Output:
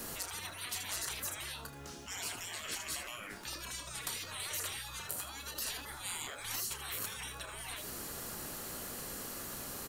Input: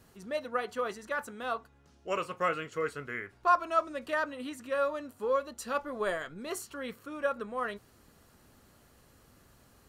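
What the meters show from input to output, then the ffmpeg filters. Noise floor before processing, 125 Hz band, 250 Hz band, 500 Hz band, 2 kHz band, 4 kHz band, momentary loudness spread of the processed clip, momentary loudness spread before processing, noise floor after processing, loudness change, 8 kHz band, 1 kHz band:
-62 dBFS, +1.5 dB, -10.0 dB, -18.0 dB, -6.0 dB, +7.5 dB, 5 LU, 9 LU, -48 dBFS, -6.0 dB, +11.5 dB, -14.5 dB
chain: -filter_complex "[0:a]acrossover=split=220|3000[a][b][c];[b]acompressor=threshold=-41dB:ratio=2.5[d];[a][d][c]amix=inputs=3:normalize=0,highshelf=f=5.6k:g=10.5,acompressor=threshold=-41dB:ratio=6,aecho=1:1:31|79:0.299|0.237,afftfilt=real='re*lt(hypot(re,im),0.00562)':imag='im*lt(hypot(re,im),0.00562)':win_size=1024:overlap=0.75,volume=15.5dB"

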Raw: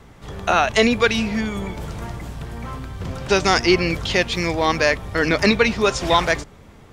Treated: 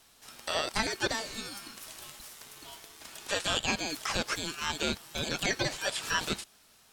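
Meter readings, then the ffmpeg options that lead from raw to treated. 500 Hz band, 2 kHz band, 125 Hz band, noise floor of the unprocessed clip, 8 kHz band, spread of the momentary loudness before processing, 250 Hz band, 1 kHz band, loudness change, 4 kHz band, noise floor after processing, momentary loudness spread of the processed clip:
-17.5 dB, -12.5 dB, -16.5 dB, -46 dBFS, -4.0 dB, 16 LU, -17.5 dB, -15.0 dB, -13.0 dB, -8.0 dB, -61 dBFS, 16 LU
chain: -filter_complex "[0:a]aderivative,aeval=exprs='val(0)*sin(2*PI*2000*n/s)':c=same,acrossover=split=3300[a][b];[b]acompressor=threshold=-40dB:ratio=4:attack=1:release=60[c];[a][c]amix=inputs=2:normalize=0,volume=5dB"

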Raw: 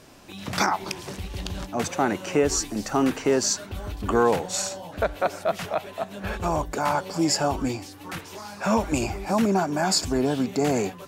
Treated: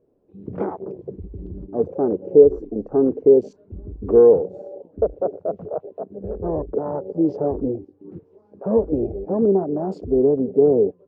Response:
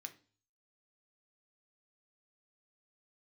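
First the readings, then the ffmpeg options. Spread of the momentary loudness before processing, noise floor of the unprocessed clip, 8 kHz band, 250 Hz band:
12 LU, -43 dBFS, under -40 dB, +3.0 dB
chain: -af "afwtdn=0.0398,lowpass=f=450:t=q:w=4.9,crystalizer=i=4:c=0,volume=-1.5dB"

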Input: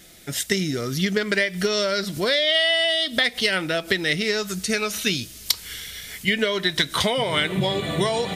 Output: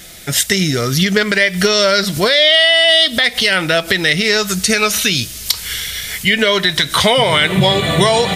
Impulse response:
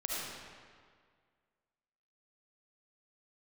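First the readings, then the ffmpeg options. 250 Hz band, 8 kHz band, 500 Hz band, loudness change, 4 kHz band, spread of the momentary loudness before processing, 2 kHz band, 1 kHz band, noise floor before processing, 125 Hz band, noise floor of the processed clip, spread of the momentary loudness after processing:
+8.0 dB, +11.0 dB, +8.5 dB, +9.5 dB, +10.0 dB, 7 LU, +9.5 dB, +11.0 dB, -42 dBFS, +10.0 dB, -30 dBFS, 9 LU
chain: -af "equalizer=f=300:w=1.1:g=-6,alimiter=level_in=13.5dB:limit=-1dB:release=50:level=0:latency=1,volume=-1dB"

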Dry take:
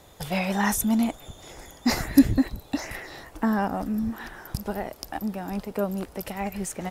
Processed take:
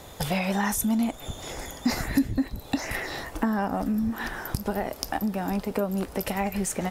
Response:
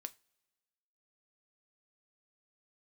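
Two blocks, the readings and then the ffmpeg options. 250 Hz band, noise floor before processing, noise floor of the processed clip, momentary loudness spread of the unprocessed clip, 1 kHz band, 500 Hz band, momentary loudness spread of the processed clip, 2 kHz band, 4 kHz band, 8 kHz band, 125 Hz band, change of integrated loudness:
-2.0 dB, -51 dBFS, -44 dBFS, 16 LU, +0.5 dB, +1.0 dB, 6 LU, +0.5 dB, +0.5 dB, +0.5 dB, 0.0 dB, -1.5 dB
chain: -filter_complex "[0:a]acompressor=threshold=-32dB:ratio=4,asplit=2[a][b];[1:a]atrim=start_sample=2205[c];[b][c]afir=irnorm=-1:irlink=0,volume=7dB[d];[a][d]amix=inputs=2:normalize=0"

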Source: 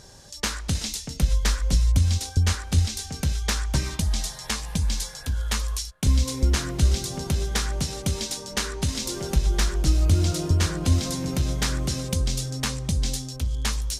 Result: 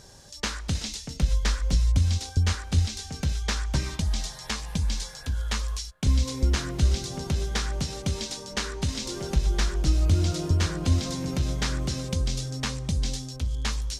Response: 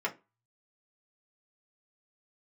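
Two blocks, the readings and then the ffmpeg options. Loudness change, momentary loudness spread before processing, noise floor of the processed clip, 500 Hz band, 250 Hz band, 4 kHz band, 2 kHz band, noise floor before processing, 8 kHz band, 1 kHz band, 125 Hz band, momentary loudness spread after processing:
-2.5 dB, 7 LU, -43 dBFS, -2.0 dB, -2.0 dB, -2.5 dB, -2.0 dB, -40 dBFS, -5.0 dB, -2.0 dB, -2.0 dB, 7 LU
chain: -filter_complex "[0:a]acrossover=split=7400[a][b];[b]acompressor=threshold=-48dB:ratio=4:attack=1:release=60[c];[a][c]amix=inputs=2:normalize=0,volume=-2dB"

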